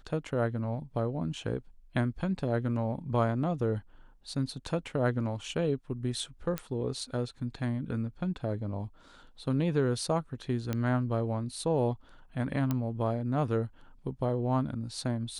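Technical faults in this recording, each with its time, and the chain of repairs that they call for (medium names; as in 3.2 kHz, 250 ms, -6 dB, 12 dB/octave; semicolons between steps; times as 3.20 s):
6.58 s: pop -16 dBFS
10.73 s: pop -18 dBFS
12.71 s: pop -17 dBFS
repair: de-click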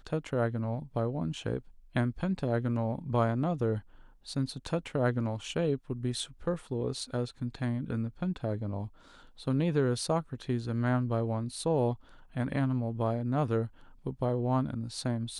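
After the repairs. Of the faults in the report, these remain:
nothing left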